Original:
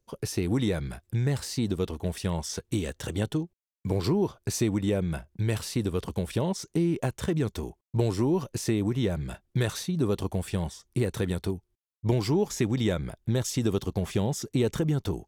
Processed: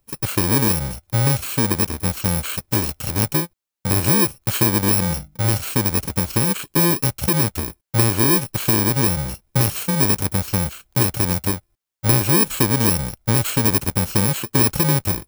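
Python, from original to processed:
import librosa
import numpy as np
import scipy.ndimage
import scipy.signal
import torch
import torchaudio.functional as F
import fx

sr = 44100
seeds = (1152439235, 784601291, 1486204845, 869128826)

y = fx.bit_reversed(x, sr, seeds[0], block=64)
y = fx.hum_notches(y, sr, base_hz=50, count=6, at=(5.03, 5.51))
y = y * 10.0 ** (8.5 / 20.0)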